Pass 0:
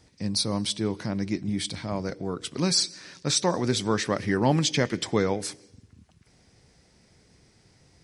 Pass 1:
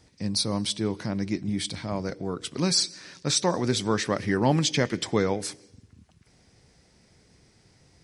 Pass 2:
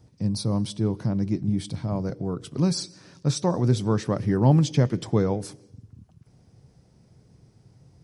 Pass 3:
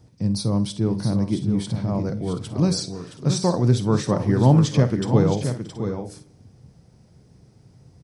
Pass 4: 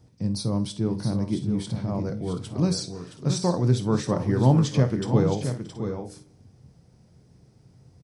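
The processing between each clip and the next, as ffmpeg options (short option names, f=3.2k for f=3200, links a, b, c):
-af anull
-af "equalizer=f=125:t=o:w=1:g=10,equalizer=f=2k:t=o:w=1:g=-10,equalizer=f=4k:t=o:w=1:g=-6,equalizer=f=8k:t=o:w=1:g=-7"
-af "aecho=1:1:50|65|627|669|725:0.188|0.106|0.126|0.398|0.141,volume=2.5dB"
-filter_complex "[0:a]asplit=2[a][b];[b]adelay=23,volume=-13.5dB[c];[a][c]amix=inputs=2:normalize=0,volume=-3.5dB"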